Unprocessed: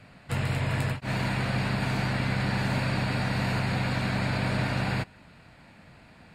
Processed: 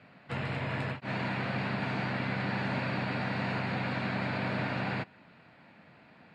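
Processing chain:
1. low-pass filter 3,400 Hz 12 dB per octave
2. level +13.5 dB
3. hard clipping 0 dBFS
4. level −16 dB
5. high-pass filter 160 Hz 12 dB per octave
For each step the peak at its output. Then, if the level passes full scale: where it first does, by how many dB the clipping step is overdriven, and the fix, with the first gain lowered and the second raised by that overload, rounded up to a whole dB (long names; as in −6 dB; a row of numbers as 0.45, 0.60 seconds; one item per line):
−16.0, −2.5, −2.5, −18.5, −19.5 dBFS
no step passes full scale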